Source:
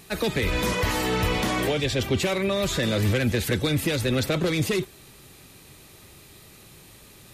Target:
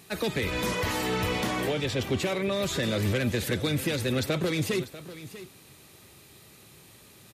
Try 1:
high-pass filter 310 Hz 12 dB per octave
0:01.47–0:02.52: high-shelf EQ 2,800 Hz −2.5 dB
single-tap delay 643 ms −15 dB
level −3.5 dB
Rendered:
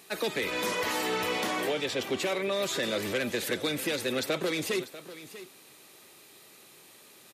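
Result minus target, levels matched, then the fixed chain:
125 Hz band −12.0 dB
high-pass filter 78 Hz 12 dB per octave
0:01.47–0:02.52: high-shelf EQ 2,800 Hz −2.5 dB
single-tap delay 643 ms −15 dB
level −3.5 dB

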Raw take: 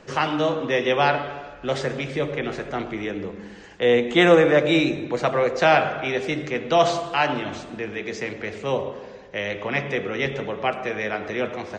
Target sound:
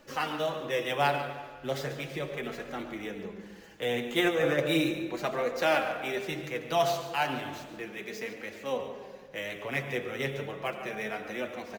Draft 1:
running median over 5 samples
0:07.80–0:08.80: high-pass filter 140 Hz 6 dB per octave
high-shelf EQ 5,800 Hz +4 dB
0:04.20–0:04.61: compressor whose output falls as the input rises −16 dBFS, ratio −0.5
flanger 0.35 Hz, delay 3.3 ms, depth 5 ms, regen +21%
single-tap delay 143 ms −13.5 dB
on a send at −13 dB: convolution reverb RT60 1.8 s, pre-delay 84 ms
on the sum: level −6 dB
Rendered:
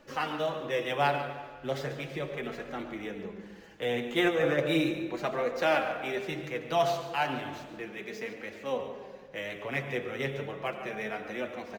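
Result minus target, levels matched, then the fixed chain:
8,000 Hz band −4.5 dB
running median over 5 samples
0:07.80–0:08.80: high-pass filter 140 Hz 6 dB per octave
high-shelf EQ 5,800 Hz +12.5 dB
0:04.20–0:04.61: compressor whose output falls as the input rises −16 dBFS, ratio −0.5
flanger 0.35 Hz, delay 3.3 ms, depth 5 ms, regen +21%
single-tap delay 143 ms −13.5 dB
on a send at −13 dB: convolution reverb RT60 1.8 s, pre-delay 84 ms
on the sum: level −6 dB

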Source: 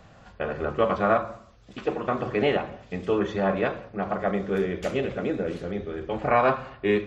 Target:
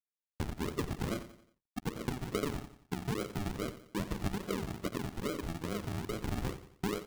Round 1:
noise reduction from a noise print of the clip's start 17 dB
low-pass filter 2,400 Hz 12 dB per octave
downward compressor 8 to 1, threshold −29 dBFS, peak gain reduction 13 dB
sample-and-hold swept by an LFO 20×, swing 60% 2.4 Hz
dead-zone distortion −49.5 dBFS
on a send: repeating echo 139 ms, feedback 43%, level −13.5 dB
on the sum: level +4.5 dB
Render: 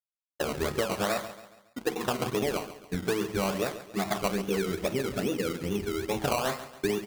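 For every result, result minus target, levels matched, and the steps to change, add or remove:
sample-and-hold swept by an LFO: distortion −20 dB; echo 50 ms late; downward compressor: peak gain reduction −6 dB
change: sample-and-hold swept by an LFO 69×, swing 60% 2.4 Hz
change: repeating echo 89 ms, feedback 43%, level −13.5 dB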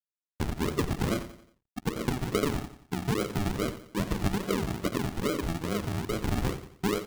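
downward compressor: peak gain reduction −6 dB
change: downward compressor 8 to 1, threshold −36 dBFS, peak gain reduction 19 dB

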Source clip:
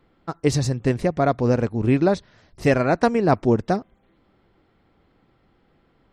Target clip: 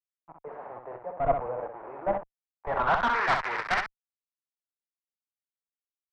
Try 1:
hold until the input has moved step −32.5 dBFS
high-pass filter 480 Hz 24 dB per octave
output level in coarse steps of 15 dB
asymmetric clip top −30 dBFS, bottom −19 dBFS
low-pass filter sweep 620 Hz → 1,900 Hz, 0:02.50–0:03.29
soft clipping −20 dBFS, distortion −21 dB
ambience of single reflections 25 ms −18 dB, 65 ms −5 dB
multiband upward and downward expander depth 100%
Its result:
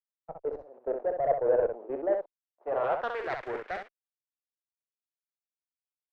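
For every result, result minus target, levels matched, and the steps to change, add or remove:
2,000 Hz band −8.5 dB; hold until the input has moved: distortion −9 dB
add after high-pass filter: flat-topped bell 1,500 Hz +15 dB 2 octaves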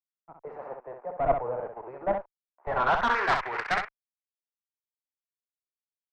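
hold until the input has moved: distortion −9 dB
change: hold until the input has moved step −24.5 dBFS

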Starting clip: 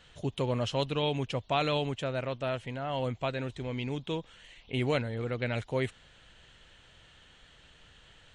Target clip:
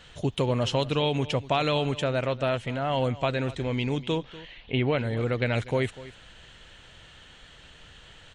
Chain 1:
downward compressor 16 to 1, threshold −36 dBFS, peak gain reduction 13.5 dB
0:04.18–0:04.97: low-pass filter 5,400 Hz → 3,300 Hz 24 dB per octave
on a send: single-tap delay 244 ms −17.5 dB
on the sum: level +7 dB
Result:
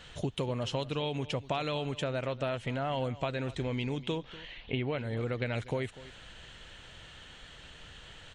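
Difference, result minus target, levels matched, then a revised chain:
downward compressor: peak gain reduction +8.5 dB
downward compressor 16 to 1, threshold −27 dBFS, peak gain reduction 5 dB
0:04.18–0:04.97: low-pass filter 5,400 Hz → 3,300 Hz 24 dB per octave
on a send: single-tap delay 244 ms −17.5 dB
on the sum: level +7 dB

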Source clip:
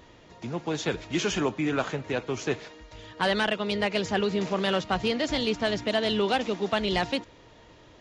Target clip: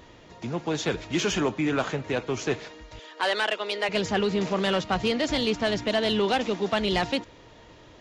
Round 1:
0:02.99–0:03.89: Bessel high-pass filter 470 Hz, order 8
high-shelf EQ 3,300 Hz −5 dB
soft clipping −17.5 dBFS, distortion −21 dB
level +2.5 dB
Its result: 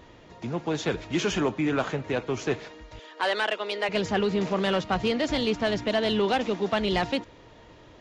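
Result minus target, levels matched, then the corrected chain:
8,000 Hz band −3.5 dB
0:02.99–0:03.89: Bessel high-pass filter 470 Hz, order 8
soft clipping −17.5 dBFS, distortion −20 dB
level +2.5 dB

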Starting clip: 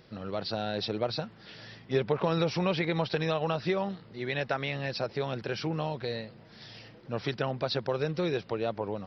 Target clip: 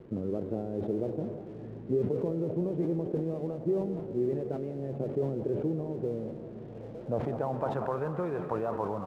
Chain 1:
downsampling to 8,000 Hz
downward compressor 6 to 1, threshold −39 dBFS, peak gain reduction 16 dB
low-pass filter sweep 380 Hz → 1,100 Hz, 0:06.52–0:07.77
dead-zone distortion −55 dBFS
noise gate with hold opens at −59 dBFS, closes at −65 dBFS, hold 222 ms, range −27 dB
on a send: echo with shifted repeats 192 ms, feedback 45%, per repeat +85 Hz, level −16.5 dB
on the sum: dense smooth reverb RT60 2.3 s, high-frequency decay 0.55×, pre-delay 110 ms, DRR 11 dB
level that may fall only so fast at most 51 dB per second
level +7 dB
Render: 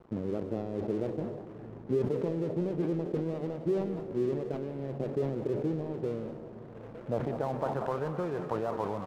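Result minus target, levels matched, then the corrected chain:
dead-zone distortion: distortion +11 dB
downsampling to 8,000 Hz
downward compressor 6 to 1, threshold −39 dBFS, peak gain reduction 16 dB
low-pass filter sweep 380 Hz → 1,100 Hz, 0:06.52–0:07.77
dead-zone distortion −66.5 dBFS
noise gate with hold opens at −59 dBFS, closes at −65 dBFS, hold 222 ms, range −27 dB
on a send: echo with shifted repeats 192 ms, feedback 45%, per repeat +85 Hz, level −16.5 dB
on the sum: dense smooth reverb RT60 2.3 s, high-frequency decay 0.55×, pre-delay 110 ms, DRR 11 dB
level that may fall only so fast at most 51 dB per second
level +7 dB

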